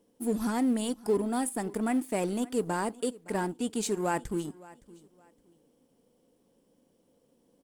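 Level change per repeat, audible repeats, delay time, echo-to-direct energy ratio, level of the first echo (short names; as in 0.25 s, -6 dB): -11.5 dB, 2, 0.565 s, -20.5 dB, -21.0 dB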